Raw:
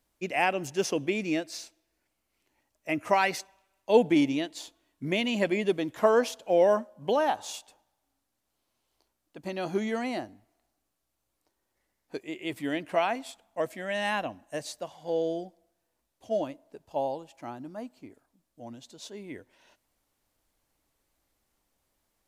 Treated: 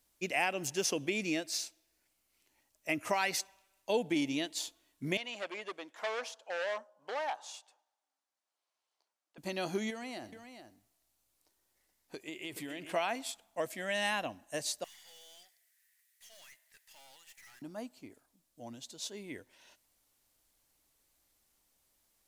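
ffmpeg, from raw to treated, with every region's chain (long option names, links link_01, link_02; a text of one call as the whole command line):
ffmpeg -i in.wav -filter_complex "[0:a]asettb=1/sr,asplit=3[link_01][link_02][link_03];[link_01]atrim=end=5.174[link_04];[link_02]atrim=start=5.17:end=9.38,asetpts=PTS-STARTPTS,afade=type=in:duration=0.004:curve=qsin,afade=type=out:start_time=4.206:duration=0.004:curve=qsin,equalizer=frequency=3400:width_type=o:width=2.4:gain=-10,asoftclip=type=hard:threshold=-24dB,highpass=770,lowpass=4900[link_05];[link_03]atrim=start=9.376[link_06];[link_04][link_05]acrossfade=duration=0.004:curve1=hsin:curve2=qsin[link_07];[link_07][link_06]acrossfade=duration=0.004:curve1=qsin:curve2=hsin,asettb=1/sr,asplit=3[link_08][link_09][link_10];[link_08]atrim=end=9.904[link_11];[link_09]atrim=start=9.9:end=12.93,asetpts=PTS-STARTPTS,afade=type=in:duration=0.004:curve=qsin,afade=type=out:start_time=3.026:duration=0.004:curve=qsin,acompressor=threshold=-35dB:ratio=10:attack=3.2:release=140:knee=1:detection=peak,aecho=1:1:123|425:0.1|0.335,atrim=end_sample=133623[link_12];[link_10]atrim=start=12.926[link_13];[link_11][link_12]acrossfade=duration=0.004:curve1=hsin:curve2=qsin[link_14];[link_14][link_13]acrossfade=duration=0.004:curve1=qsin:curve2=hsin,asettb=1/sr,asplit=3[link_15][link_16][link_17];[link_15]atrim=end=14.844[link_18];[link_16]atrim=start=14.84:end=17.62,asetpts=PTS-STARTPTS,afade=type=in:duration=0.004:curve=qsin,afade=type=out:start_time=2.776:duration=0.004:curve=qsin,highpass=frequency=1900:width_type=q:width=9,highshelf=frequency=6400:gain=10.5,aeval=exprs='(tanh(631*val(0)+0.55)-tanh(0.55))/631':channel_layout=same[link_19];[link_17]atrim=start=17.616[link_20];[link_18][link_19]acrossfade=duration=0.004:curve1=hsin:curve2=qsin[link_21];[link_21][link_20]acrossfade=duration=0.004:curve1=qsin:curve2=hsin,acompressor=threshold=-27dB:ratio=2.5,highshelf=frequency=2600:gain=10,volume=-4dB" out.wav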